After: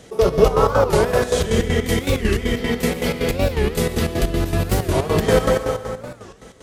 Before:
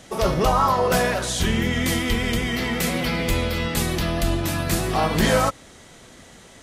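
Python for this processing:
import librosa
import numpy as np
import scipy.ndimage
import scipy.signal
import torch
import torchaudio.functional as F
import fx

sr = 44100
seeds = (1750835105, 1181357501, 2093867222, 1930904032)

y = fx.peak_eq(x, sr, hz=440.0, db=14.5, octaves=0.29)
y = fx.rev_plate(y, sr, seeds[0], rt60_s=1.9, hf_ratio=0.8, predelay_ms=110, drr_db=2.0)
y = fx.chopper(y, sr, hz=5.3, depth_pct=65, duty_pct=55)
y = fx.peak_eq(y, sr, hz=92.0, db=5.0, octaves=2.6)
y = fx.record_warp(y, sr, rpm=45.0, depth_cents=250.0)
y = y * 10.0 ** (-1.5 / 20.0)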